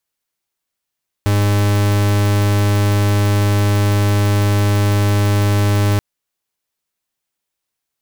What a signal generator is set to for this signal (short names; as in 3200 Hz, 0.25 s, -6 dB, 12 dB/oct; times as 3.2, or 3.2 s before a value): pulse 102 Hz, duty 43% -14 dBFS 4.73 s